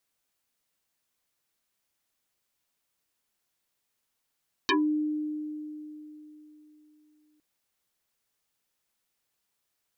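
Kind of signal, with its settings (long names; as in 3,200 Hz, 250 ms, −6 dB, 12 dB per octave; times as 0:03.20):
two-operator FM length 2.71 s, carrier 303 Hz, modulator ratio 2.27, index 8, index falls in 0.18 s exponential, decay 3.61 s, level −20 dB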